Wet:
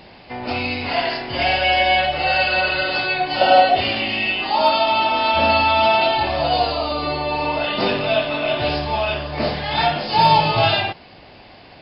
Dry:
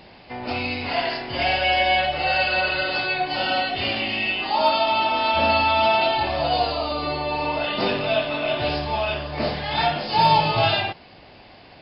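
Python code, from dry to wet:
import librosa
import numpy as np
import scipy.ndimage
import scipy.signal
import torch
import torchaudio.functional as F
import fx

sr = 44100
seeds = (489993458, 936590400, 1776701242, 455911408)

y = fx.peak_eq(x, sr, hz=620.0, db=13.0, octaves=0.95, at=(3.41, 3.81))
y = F.gain(torch.from_numpy(y), 3.0).numpy()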